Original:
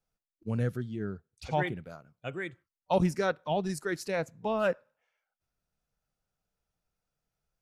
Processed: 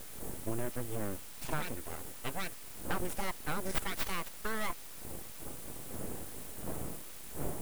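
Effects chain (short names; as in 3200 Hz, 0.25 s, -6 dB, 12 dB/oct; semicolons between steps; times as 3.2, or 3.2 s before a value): wind noise 270 Hz -45 dBFS; 3.71–4.7 bell 220 Hz -13.5 dB 1.4 oct; compressor 6:1, threshold -33 dBFS, peak gain reduction 12 dB; added noise pink -55 dBFS; resonant high shelf 6900 Hz +11.5 dB, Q 1.5; full-wave rectifier; gain +3.5 dB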